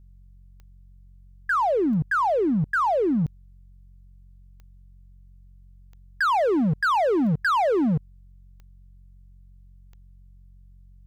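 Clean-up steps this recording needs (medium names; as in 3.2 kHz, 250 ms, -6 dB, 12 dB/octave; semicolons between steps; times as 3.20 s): clip repair -19 dBFS; de-click; de-hum 45.7 Hz, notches 4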